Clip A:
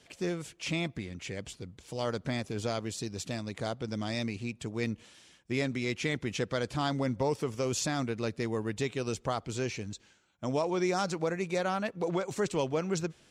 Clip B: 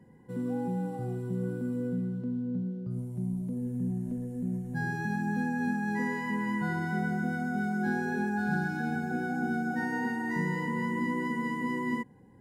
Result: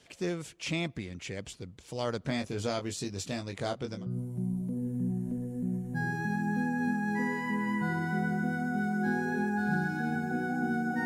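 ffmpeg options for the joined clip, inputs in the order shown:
-filter_complex "[0:a]asettb=1/sr,asplit=3[a][b][c];[a]atrim=end=2.264[d];[b]atrim=start=2.26:end=4.06,asetpts=PTS-STARTPTS,afade=t=in:d=0.004:c=qsin,afade=t=out:st=1.796:d=0.004:c=qsin,asplit=2[e][f];[f]adelay=21,volume=-6dB[g];[e][g]amix=inputs=2:normalize=0,atrim=end_sample=79380[h];[c]atrim=start=4.056[i];[d][h]acrossfade=d=0.004:c1=hsin:c2=qsin[j];[j][i]acrossfade=d=0.004:c1=qsin:c2=hsin,apad=whole_dur=11.05,atrim=end=11.05,atrim=end=4.06,asetpts=PTS-STARTPTS[k];[1:a]atrim=start=2.68:end=9.85,asetpts=PTS-STARTPTS[l];[k][l]acrossfade=d=0.18:c1=tri:c2=tri"

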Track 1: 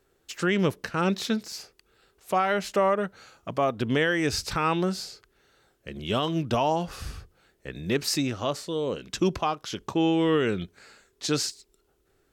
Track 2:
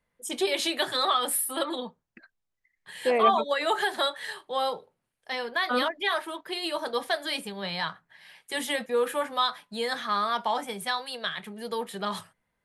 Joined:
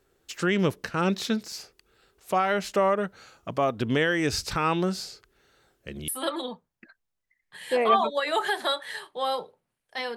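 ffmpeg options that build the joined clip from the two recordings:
-filter_complex "[0:a]apad=whole_dur=10.16,atrim=end=10.16,atrim=end=6.082[a];[1:a]atrim=start=1.418:end=5.5[b];[a][b]acrossfade=d=0.004:c1=hsin:c2=hsin"

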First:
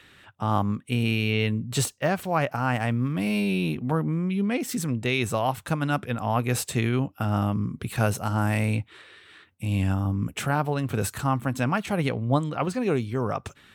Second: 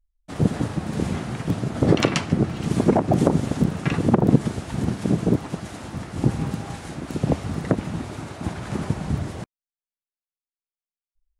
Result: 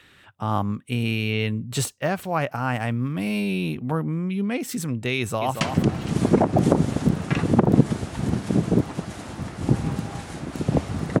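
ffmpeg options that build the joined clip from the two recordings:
-filter_complex "[0:a]apad=whole_dur=11.2,atrim=end=11.2,atrim=end=5.612[a];[1:a]atrim=start=2.158:end=7.75[b];[a][b]acrossfade=d=0.004:c1=hsin:c2=hsin,asplit=2[c][d];[d]afade=t=in:st=5.18:d=0.01,afade=t=out:st=5.61:d=0.01,aecho=0:1:230|460|690|920:0.446684|0.134005|0.0402015|0.0120605[e];[c][e]amix=inputs=2:normalize=0"

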